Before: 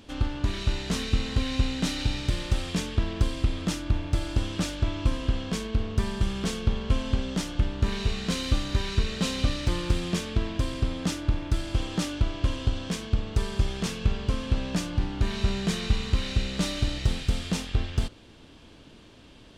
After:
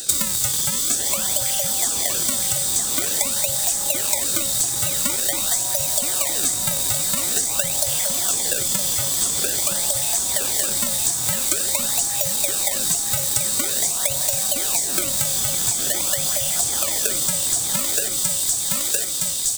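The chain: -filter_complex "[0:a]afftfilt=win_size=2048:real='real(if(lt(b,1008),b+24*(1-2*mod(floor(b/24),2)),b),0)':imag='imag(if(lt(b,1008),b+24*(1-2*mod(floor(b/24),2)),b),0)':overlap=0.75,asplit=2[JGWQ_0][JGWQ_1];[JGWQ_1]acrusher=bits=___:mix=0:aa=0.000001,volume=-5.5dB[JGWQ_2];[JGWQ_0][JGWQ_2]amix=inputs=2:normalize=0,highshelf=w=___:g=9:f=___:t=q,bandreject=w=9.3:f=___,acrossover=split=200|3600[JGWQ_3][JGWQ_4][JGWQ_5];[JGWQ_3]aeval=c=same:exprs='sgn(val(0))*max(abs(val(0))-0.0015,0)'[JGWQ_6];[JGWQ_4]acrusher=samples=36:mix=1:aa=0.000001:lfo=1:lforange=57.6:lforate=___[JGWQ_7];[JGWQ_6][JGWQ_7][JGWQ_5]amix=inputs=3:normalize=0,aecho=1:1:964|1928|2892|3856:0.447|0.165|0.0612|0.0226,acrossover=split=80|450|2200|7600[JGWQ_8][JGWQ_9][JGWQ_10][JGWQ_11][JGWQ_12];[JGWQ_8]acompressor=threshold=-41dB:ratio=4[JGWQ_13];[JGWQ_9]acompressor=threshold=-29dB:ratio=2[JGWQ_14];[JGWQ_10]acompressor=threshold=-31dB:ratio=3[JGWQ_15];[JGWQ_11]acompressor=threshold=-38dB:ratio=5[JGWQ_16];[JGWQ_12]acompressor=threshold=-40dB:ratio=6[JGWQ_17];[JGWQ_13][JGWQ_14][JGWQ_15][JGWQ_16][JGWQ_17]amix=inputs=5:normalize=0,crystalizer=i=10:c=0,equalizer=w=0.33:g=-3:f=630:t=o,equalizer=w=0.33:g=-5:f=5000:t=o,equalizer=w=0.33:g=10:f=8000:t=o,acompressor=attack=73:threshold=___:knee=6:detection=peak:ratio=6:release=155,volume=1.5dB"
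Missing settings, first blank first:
5, 3, 3000, 4000, 0.47, -25dB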